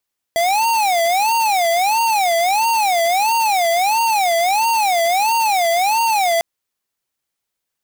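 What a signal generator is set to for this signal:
siren wail 669–923 Hz 1.5 per second square −16 dBFS 6.05 s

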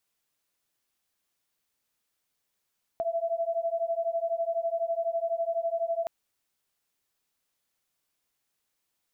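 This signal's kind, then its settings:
two tones that beat 663 Hz, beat 12 Hz, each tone −29.5 dBFS 3.07 s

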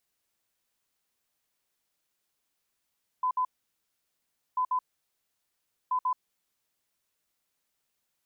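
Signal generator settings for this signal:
beeps in groups sine 1,010 Hz, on 0.08 s, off 0.06 s, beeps 2, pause 1.12 s, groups 3, −24 dBFS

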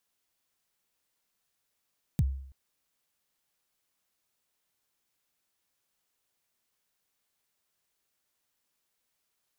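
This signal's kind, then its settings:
synth kick length 0.33 s, from 190 Hz, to 67 Hz, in 38 ms, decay 0.64 s, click on, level −19 dB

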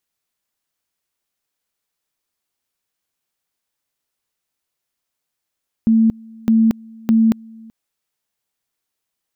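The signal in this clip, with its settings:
tone at two levels in turn 224 Hz −9.5 dBFS, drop 26.5 dB, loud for 0.23 s, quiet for 0.38 s, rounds 3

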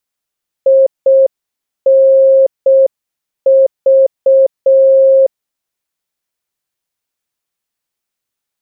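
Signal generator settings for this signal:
Morse code "INV" 6 words per minute 536 Hz −4 dBFS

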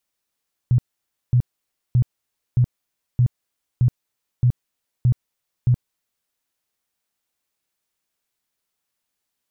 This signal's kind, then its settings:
tone bursts 123 Hz, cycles 9, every 0.62 s, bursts 9, −12 dBFS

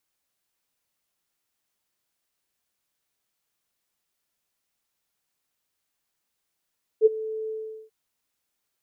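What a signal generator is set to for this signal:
note with an ADSR envelope sine 438 Hz, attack 47 ms, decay 23 ms, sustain −18.5 dB, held 0.48 s, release 408 ms −10 dBFS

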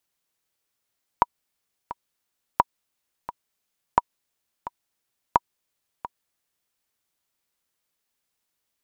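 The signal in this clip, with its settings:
click track 87 BPM, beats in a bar 2, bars 4, 963 Hz, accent 15.5 dB −2.5 dBFS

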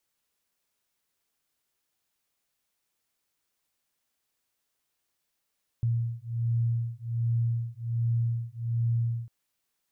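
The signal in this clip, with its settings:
two tones that beat 116 Hz, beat 1.3 Hz, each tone −28.5 dBFS 3.45 s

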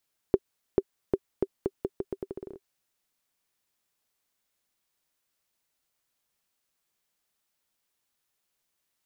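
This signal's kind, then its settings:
bouncing ball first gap 0.44 s, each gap 0.81, 389 Hz, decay 46 ms −8 dBFS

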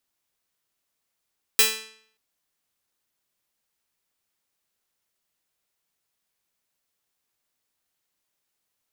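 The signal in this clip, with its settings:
Karplus-Strong string A3, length 0.58 s, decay 0.62 s, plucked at 0.3, bright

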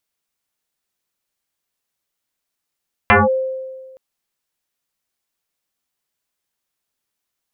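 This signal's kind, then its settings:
two-operator FM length 0.87 s, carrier 524 Hz, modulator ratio 0.59, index 6.7, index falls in 0.18 s linear, decay 1.55 s, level −6 dB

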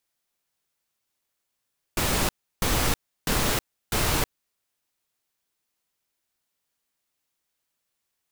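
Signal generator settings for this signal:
noise bursts pink, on 0.32 s, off 0.33 s, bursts 4, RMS −23.5 dBFS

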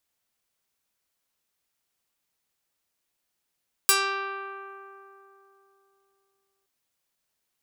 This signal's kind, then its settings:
Karplus-Strong string G4, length 2.77 s, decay 3.34 s, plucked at 0.19, medium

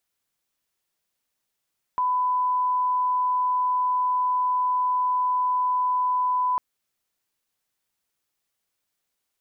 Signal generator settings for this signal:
line-up tone −20 dBFS 4.60 s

